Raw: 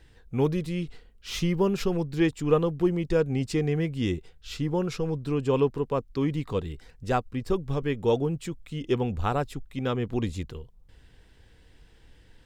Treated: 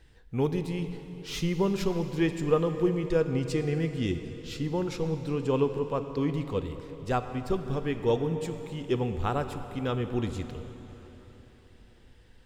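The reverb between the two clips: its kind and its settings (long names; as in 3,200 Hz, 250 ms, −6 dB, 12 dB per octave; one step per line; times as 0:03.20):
dense smooth reverb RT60 4.1 s, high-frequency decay 0.85×, DRR 8 dB
level −2.5 dB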